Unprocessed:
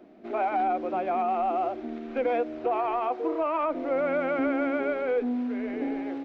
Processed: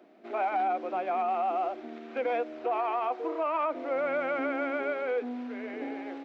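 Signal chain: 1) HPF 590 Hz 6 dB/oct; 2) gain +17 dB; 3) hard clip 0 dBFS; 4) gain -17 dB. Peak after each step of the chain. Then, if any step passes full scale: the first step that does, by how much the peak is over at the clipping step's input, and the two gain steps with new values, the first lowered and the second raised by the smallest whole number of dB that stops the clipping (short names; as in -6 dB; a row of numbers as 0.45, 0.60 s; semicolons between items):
-20.0, -3.0, -3.0, -20.0 dBFS; no overload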